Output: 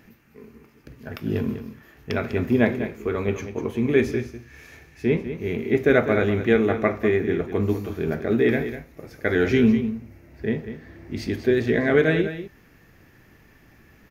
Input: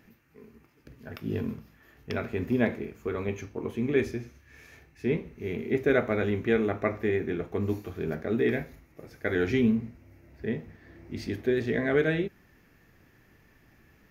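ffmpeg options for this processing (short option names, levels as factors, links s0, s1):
-af "aecho=1:1:198:0.282,volume=2"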